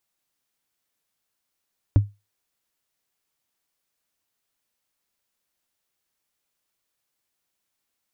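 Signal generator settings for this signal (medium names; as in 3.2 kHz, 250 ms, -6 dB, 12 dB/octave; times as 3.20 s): wood hit, lowest mode 102 Hz, decay 0.23 s, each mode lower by 8.5 dB, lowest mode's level -8 dB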